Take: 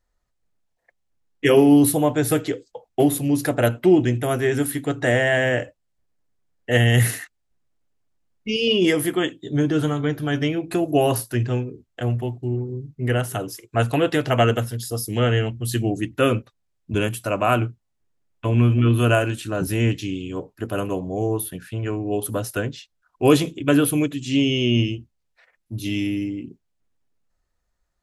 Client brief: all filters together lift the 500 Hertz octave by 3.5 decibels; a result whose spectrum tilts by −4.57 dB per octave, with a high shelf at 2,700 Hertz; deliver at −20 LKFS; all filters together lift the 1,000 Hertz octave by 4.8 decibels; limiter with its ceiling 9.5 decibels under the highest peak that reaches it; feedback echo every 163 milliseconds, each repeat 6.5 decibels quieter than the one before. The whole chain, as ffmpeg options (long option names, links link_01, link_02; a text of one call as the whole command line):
ffmpeg -i in.wav -af "equalizer=frequency=500:width_type=o:gain=3,equalizer=frequency=1000:width_type=o:gain=4.5,highshelf=frequency=2700:gain=8.5,alimiter=limit=-9dB:level=0:latency=1,aecho=1:1:163|326|489|652|815|978:0.473|0.222|0.105|0.0491|0.0231|0.0109" out.wav